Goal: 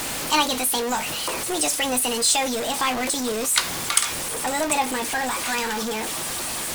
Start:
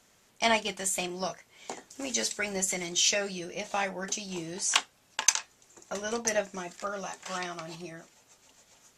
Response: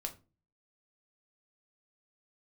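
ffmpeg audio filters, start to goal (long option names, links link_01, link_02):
-af "aeval=exprs='val(0)+0.5*0.0501*sgn(val(0))':channel_layout=same,asetrate=58653,aresample=44100,volume=3.5dB"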